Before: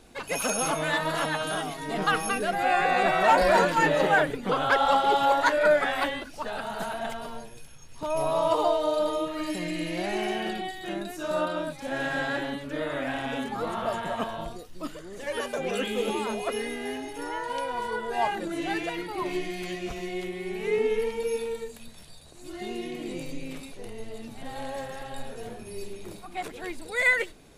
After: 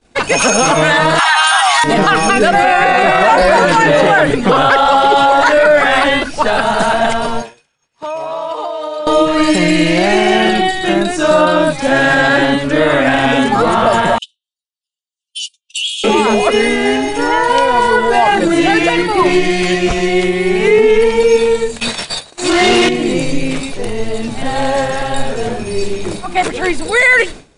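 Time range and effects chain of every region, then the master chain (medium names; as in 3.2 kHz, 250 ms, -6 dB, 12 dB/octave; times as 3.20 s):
1.19–1.84 s: steep high-pass 740 Hz 96 dB/octave + level flattener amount 100%
7.42–9.07 s: treble shelf 5.4 kHz -9 dB + compression 10:1, threshold -35 dBFS + high-pass 640 Hz 6 dB/octave
14.18–16.04 s: steep high-pass 2.8 kHz 96 dB/octave + gate -45 dBFS, range -23 dB
21.80–22.89 s: expander -42 dBFS + overdrive pedal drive 25 dB, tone 5.4 kHz, clips at -23.5 dBFS
whole clip: Chebyshev low-pass 9.9 kHz, order 10; expander -42 dBFS; loudness maximiser +22 dB; trim -1 dB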